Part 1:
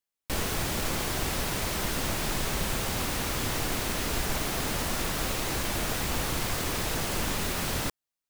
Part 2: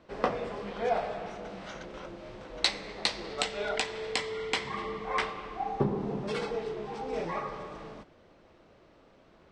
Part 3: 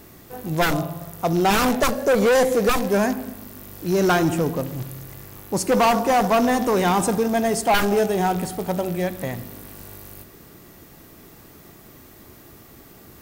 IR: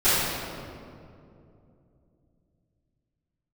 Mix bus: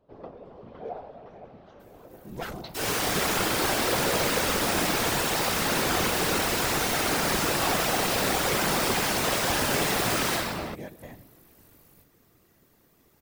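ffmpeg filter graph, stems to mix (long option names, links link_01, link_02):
-filter_complex "[0:a]highpass=frequency=420:poles=1,adelay=2450,volume=2.5dB,asplit=2[link_01][link_02];[link_02]volume=-8.5dB[link_03];[1:a]lowpass=2900,volume=0dB,asplit=2[link_04][link_05];[link_05]volume=-17.5dB[link_06];[2:a]adelay=1800,volume=-10dB[link_07];[link_01][link_04]amix=inputs=2:normalize=0,equalizer=frequency=2000:width=0.88:gain=-13.5,alimiter=limit=-21.5dB:level=0:latency=1:release=351,volume=0dB[link_08];[3:a]atrim=start_sample=2205[link_09];[link_03][link_09]afir=irnorm=-1:irlink=0[link_10];[link_06]aecho=0:1:511|1022|1533|2044|2555|3066|3577|4088|4599:1|0.57|0.325|0.185|0.106|0.0602|0.0343|0.0195|0.0111[link_11];[link_07][link_08][link_10][link_11]amix=inputs=4:normalize=0,afftfilt=real='hypot(re,im)*cos(2*PI*random(0))':imag='hypot(re,im)*sin(2*PI*random(1))':win_size=512:overlap=0.75"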